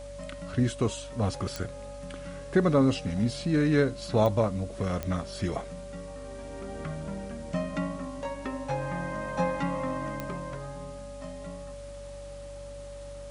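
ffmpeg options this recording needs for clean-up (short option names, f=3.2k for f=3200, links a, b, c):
-af "adeclick=t=4,bandreject=f=48.2:t=h:w=4,bandreject=f=96.4:t=h:w=4,bandreject=f=144.6:t=h:w=4,bandreject=f=570:w=30,afwtdn=0.002"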